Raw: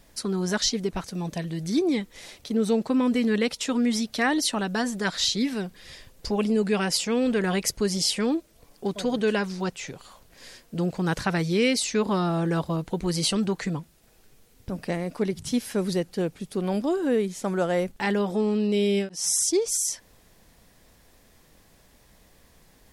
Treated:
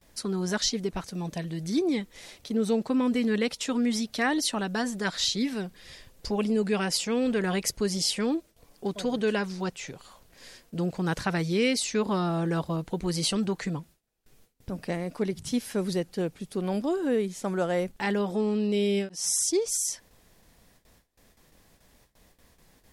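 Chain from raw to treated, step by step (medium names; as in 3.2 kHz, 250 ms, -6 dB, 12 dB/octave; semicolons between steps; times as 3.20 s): gate with hold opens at -46 dBFS; trim -2.5 dB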